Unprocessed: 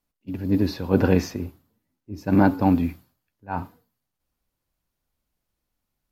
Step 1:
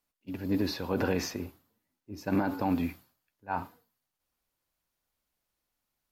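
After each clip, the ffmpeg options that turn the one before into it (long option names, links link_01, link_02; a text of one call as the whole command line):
ffmpeg -i in.wav -af "lowshelf=frequency=330:gain=-10.5,alimiter=limit=-18.5dB:level=0:latency=1:release=54" out.wav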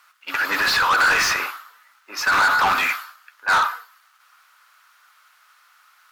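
ffmpeg -i in.wav -filter_complex "[0:a]highpass=frequency=1300:width_type=q:width=4.9,asplit=2[link_01][link_02];[link_02]highpass=frequency=720:poles=1,volume=30dB,asoftclip=type=tanh:threshold=-14.5dB[link_03];[link_01][link_03]amix=inputs=2:normalize=0,lowpass=frequency=3600:poles=1,volume=-6dB,volume=5dB" out.wav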